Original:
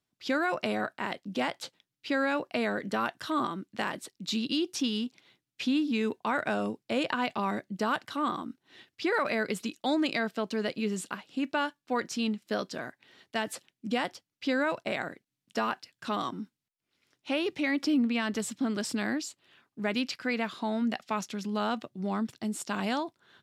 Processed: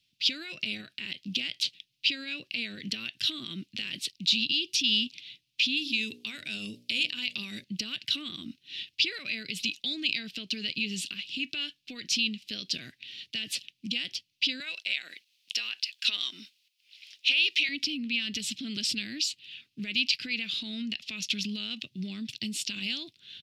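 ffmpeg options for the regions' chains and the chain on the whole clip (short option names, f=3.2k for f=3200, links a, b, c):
-filter_complex "[0:a]asettb=1/sr,asplit=3[a][b][c];[a]atrim=end=5.774[d];[b]atrim=start=5.77:end=7.64,asetpts=PTS-STARTPTS,afade=t=in:d=0.004:c=qsin,afade=t=out:st=1.866:d=0.004:c=qsin,lowpass=11k,aemphasis=mode=production:type=50fm,bandreject=f=60:t=h:w=6,bandreject=f=120:t=h:w=6,bandreject=f=180:t=h:w=6,bandreject=f=240:t=h:w=6,bandreject=f=300:t=h:w=6,bandreject=f=360:t=h:w=6,bandreject=f=420:t=h:w=6,bandreject=f=480:t=h:w=6,bandreject=f=540:t=h:w=6,bandreject=f=600:t=h:w=6[e];[c]atrim=start=7.636[f];[d][e]acrossfade=d=0.004:c1=hsin:c2=qsin[g];[g][f]acrossfade=d=0.004:c1=qsin:c2=hsin,asettb=1/sr,asplit=3[h][i][j];[h]atrim=end=14.604[k];[i]atrim=start=14.6:end=17.69,asetpts=PTS-STARTPTS,afade=t=in:d=0.004:c=qsin,afade=t=out:st=3.086:d=0.004:c=qsin,highpass=690,acontrast=85[l];[j]atrim=start=17.686[m];[k][l]acrossfade=d=0.004:c1=hsin:c2=qsin[n];[n][m]acrossfade=d=0.004:c1=qsin:c2=hsin,acompressor=threshold=-33dB:ratio=2.5,alimiter=level_in=6dB:limit=-24dB:level=0:latency=1:release=80,volume=-6dB,firequalizer=gain_entry='entry(120,0);entry(470,-15);entry(870,-28);entry(2600,14);entry(4700,11);entry(7400,-1)':delay=0.05:min_phase=1,volume=5.5dB"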